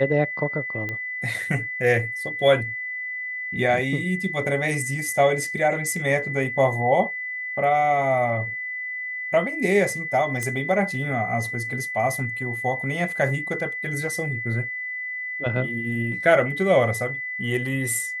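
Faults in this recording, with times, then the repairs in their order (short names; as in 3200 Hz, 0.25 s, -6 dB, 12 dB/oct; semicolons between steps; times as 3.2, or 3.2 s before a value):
tone 2000 Hz -28 dBFS
0.89 pop -17 dBFS
10.43 pop -14 dBFS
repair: de-click; notch 2000 Hz, Q 30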